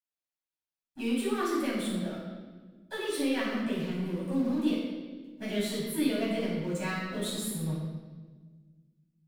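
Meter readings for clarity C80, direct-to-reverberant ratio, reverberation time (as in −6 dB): 2.5 dB, −8.0 dB, 1.4 s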